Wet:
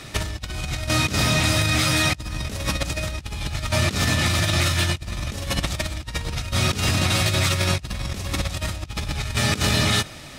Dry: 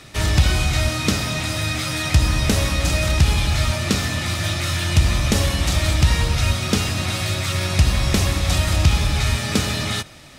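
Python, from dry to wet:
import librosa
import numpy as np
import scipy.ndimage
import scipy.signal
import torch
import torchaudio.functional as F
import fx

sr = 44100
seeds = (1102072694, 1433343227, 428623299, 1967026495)

y = fx.over_compress(x, sr, threshold_db=-23.0, ratio=-0.5)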